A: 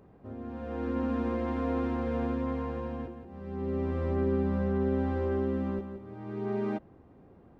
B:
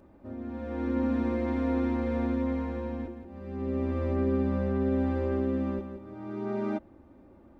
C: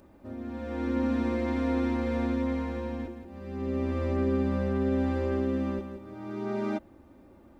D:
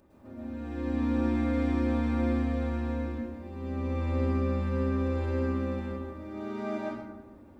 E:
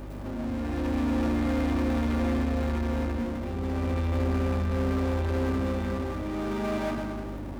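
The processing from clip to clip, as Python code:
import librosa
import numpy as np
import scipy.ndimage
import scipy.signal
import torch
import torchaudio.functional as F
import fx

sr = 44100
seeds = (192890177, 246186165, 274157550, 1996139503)

y1 = x + 0.67 * np.pad(x, (int(3.4 * sr / 1000.0), 0))[:len(x)]
y2 = fx.high_shelf(y1, sr, hz=2700.0, db=10.0)
y3 = fx.rev_plate(y2, sr, seeds[0], rt60_s=1.1, hf_ratio=0.6, predelay_ms=95, drr_db=-6.0)
y3 = y3 * 10.0 ** (-6.5 / 20.0)
y4 = fx.power_curve(y3, sr, exponent=0.5)
y4 = fx.add_hum(y4, sr, base_hz=50, snr_db=12)
y4 = y4 * 10.0 ** (-3.0 / 20.0)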